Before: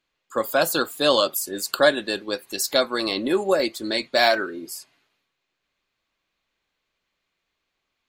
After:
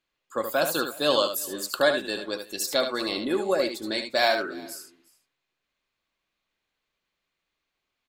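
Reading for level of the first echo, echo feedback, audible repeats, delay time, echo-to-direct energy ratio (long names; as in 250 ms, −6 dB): −7.5 dB, repeats not evenly spaced, 3, 74 ms, −7.5 dB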